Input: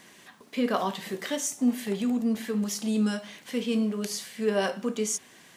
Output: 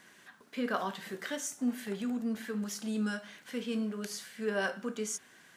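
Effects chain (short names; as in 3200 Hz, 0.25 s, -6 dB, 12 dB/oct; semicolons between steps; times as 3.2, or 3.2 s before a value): bell 1500 Hz +9.5 dB 0.45 oct; gain -7.5 dB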